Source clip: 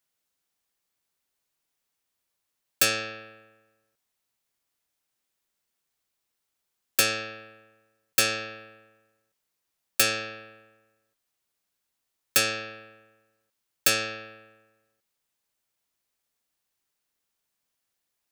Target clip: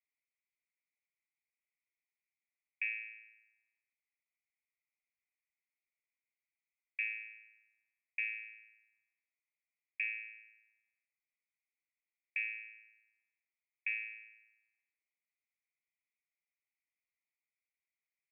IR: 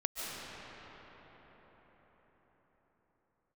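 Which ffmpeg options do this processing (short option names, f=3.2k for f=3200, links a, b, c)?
-af "asuperpass=centerf=2200:order=8:qfactor=3.6,volume=-2dB"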